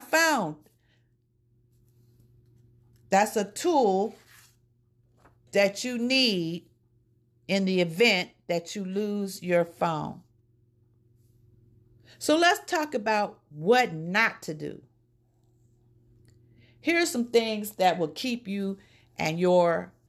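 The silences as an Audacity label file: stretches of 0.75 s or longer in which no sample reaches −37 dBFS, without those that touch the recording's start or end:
0.520000	3.120000	silence
4.100000	5.530000	silence
6.580000	7.490000	silence
10.130000	12.210000	silence
14.790000	16.850000	silence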